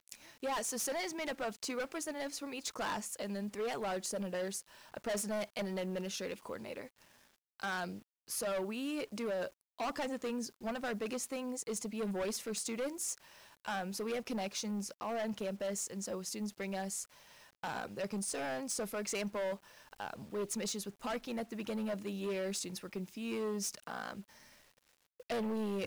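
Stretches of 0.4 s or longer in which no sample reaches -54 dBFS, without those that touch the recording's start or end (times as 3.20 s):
7.02–7.60 s
24.52–25.20 s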